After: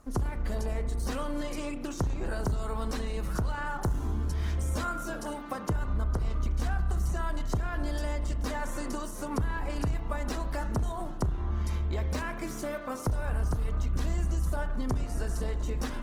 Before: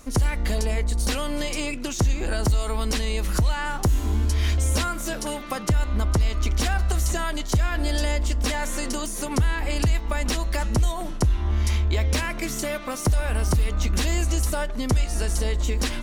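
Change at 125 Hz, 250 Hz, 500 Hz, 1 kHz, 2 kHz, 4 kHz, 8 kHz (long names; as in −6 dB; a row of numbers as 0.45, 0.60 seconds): −7.5, −6.0, −6.5, −5.5, −9.5, −15.0, −14.0 decibels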